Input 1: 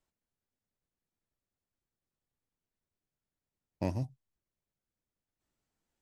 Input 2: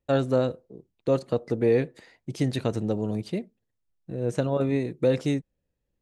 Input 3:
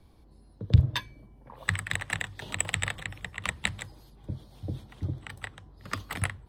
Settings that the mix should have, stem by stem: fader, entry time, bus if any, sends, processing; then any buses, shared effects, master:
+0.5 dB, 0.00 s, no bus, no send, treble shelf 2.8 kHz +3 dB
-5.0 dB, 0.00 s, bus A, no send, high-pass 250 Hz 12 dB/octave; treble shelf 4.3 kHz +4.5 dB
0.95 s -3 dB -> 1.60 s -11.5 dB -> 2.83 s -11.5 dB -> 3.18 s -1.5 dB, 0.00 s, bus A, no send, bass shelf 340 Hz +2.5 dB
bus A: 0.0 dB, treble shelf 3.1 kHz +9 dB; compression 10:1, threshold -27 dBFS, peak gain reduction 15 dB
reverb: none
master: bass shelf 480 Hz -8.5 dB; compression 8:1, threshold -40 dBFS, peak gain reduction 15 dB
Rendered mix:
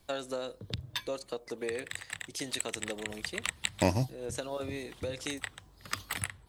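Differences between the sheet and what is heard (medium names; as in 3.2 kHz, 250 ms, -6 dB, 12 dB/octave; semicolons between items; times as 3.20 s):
stem 1 +0.5 dB -> +12.0 dB; master: missing compression 8:1, threshold -40 dBFS, peak gain reduction 15 dB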